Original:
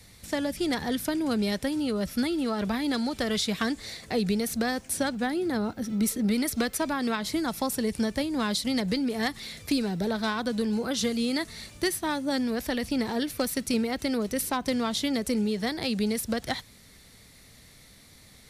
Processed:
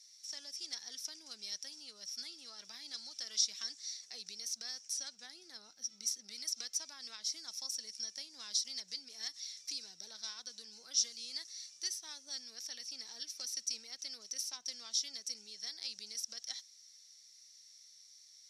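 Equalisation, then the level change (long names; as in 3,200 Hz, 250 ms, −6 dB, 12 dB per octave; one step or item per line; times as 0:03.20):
resonant band-pass 5,600 Hz, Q 11
+8.5 dB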